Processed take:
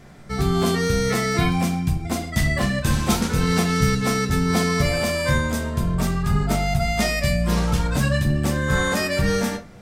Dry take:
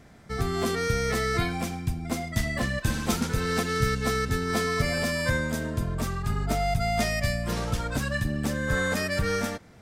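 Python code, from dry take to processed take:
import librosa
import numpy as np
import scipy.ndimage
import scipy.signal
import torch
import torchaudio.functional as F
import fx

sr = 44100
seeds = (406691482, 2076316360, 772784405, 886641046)

y = fx.room_shoebox(x, sr, seeds[0], volume_m3=150.0, walls='furnished', distance_m=1.0)
y = fx.dmg_crackle(y, sr, seeds[1], per_s=17.0, level_db=-32.0, at=(0.78, 1.53), fade=0.02)
y = F.gain(torch.from_numpy(y), 4.5).numpy()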